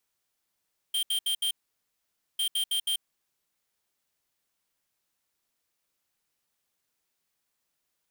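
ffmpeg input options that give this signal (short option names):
-f lavfi -i "aevalsrc='0.0422*(2*lt(mod(3170*t,1),0.5)-1)*clip(min(mod(mod(t,1.45),0.16),0.09-mod(mod(t,1.45),0.16))/0.005,0,1)*lt(mod(t,1.45),0.64)':d=2.9:s=44100"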